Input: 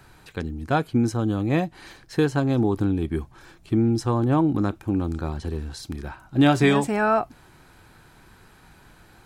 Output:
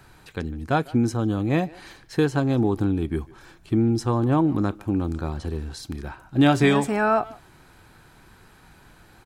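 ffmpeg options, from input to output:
ffmpeg -i in.wav -filter_complex "[0:a]asplit=2[link_01][link_02];[link_02]adelay=150,highpass=300,lowpass=3400,asoftclip=type=hard:threshold=-16dB,volume=-20dB[link_03];[link_01][link_03]amix=inputs=2:normalize=0" out.wav

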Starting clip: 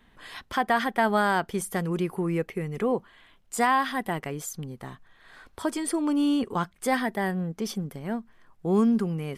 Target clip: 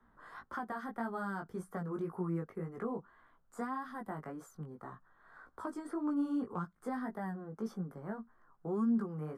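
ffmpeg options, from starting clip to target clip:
ffmpeg -i in.wav -filter_complex "[0:a]highshelf=frequency=1900:width_type=q:width=3:gain=-12,acrossover=split=110|3900[link_01][link_02][link_03];[link_01]acompressor=threshold=-59dB:ratio=6[link_04];[link_03]alimiter=level_in=17.5dB:limit=-24dB:level=0:latency=1:release=374,volume=-17.5dB[link_05];[link_04][link_02][link_05]amix=inputs=3:normalize=0,acrossover=split=290|3000[link_06][link_07][link_08];[link_07]acompressor=threshold=-32dB:ratio=4[link_09];[link_06][link_09][link_08]amix=inputs=3:normalize=0,flanger=delay=16.5:depth=3.8:speed=1.8,volume=-5.5dB" out.wav

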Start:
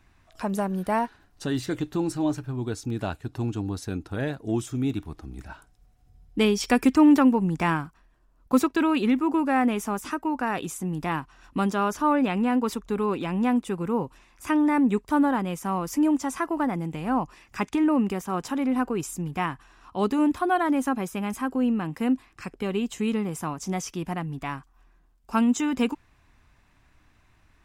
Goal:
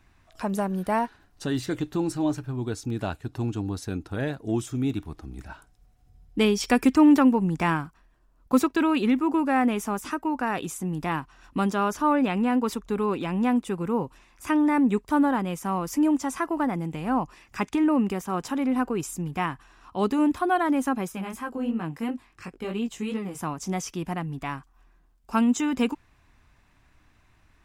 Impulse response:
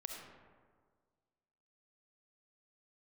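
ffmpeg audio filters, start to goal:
-filter_complex "[0:a]asettb=1/sr,asplit=3[link_01][link_02][link_03];[link_01]atrim=end=21.124[link_04];[link_02]atrim=start=21.12:end=23.39,asetpts=PTS-STARTPTS,afade=type=in:duration=0.004:curve=qsin,afade=type=out:start_time=2.266:duration=0.004:curve=qsin,flanger=delay=17:depth=5.6:speed=2.9[link_05];[link_03]atrim=start=23.386[link_06];[link_04][link_05]acrossfade=duration=0.004:curve1=hsin:curve2=qsin[link_07];[link_07][link_06]acrossfade=duration=0.004:curve1=qsin:curve2=hsin"

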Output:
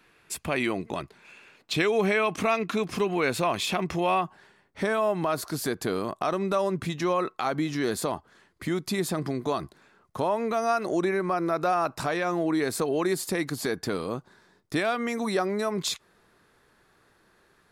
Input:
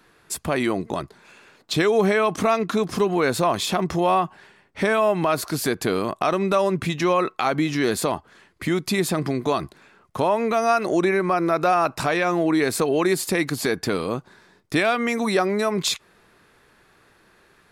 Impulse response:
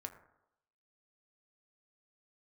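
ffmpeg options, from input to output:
-af "asetnsamples=nb_out_samples=441:pad=0,asendcmd='4.21 equalizer g -4',equalizer=frequency=2500:width=2.3:gain=8,volume=-5.5dB"

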